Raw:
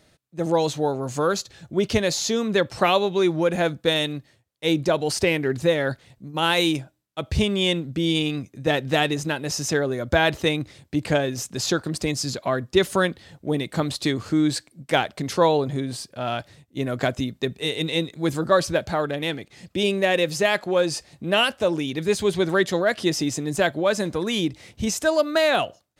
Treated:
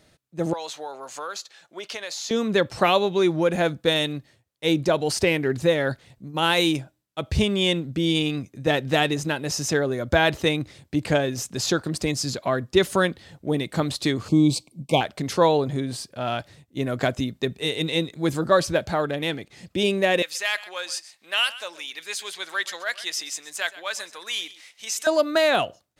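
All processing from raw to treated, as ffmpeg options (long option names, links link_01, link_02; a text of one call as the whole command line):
ffmpeg -i in.wav -filter_complex "[0:a]asettb=1/sr,asplit=3[link_01][link_02][link_03];[link_01]atrim=end=0.534[link_04];[link_02]atrim=start=0.53:end=2.31,asetpts=PTS-STARTPTS,afade=type=in:duration=0.004:curve=qsin,afade=type=out:start_time=1.776:duration=0.004:curve=qsin,highpass=820,highshelf=frequency=7800:gain=-5.5,acompressor=threshold=-30dB:ratio=3:attack=3.2:release=140:knee=1:detection=peak[link_05];[link_03]atrim=start=2.306[link_06];[link_04][link_05]acrossfade=duration=0.004:curve1=hsin:curve2=qsin[link_07];[link_07][link_06]acrossfade=duration=0.004:curve1=qsin:curve2=hsin,asettb=1/sr,asplit=3[link_08][link_09][link_10];[link_08]atrim=end=14.284[link_11];[link_09]atrim=start=14.28:end=15.01,asetpts=PTS-STARTPTS,afade=type=in:duration=0.004:curve=qsin,afade=type=out:start_time=0.726:duration=0.004:curve=qsin,asuperstop=centerf=1600:order=12:qfactor=1.5,equalizer=frequency=170:width_type=o:width=1.1:gain=6.5[link_12];[link_10]atrim=start=15.006[link_13];[link_11][link_12]acrossfade=duration=0.004:curve1=hsin:curve2=qsin[link_14];[link_14][link_13]acrossfade=duration=0.004:curve1=qsin:curve2=hsin,asettb=1/sr,asplit=3[link_15][link_16][link_17];[link_15]atrim=end=20.224[link_18];[link_16]atrim=start=20.22:end=25.07,asetpts=PTS-STARTPTS,afade=type=in:duration=0.004:curve=qsin,afade=type=out:start_time=4.846:duration=0.004:curve=qsin,highpass=1400,aecho=1:1:127:0.141,atrim=end_sample=213885[link_19];[link_17]atrim=start=25.066[link_20];[link_18][link_19]acrossfade=duration=0.004:curve1=hsin:curve2=qsin[link_21];[link_21][link_20]acrossfade=duration=0.004:curve1=qsin:curve2=hsin" out.wav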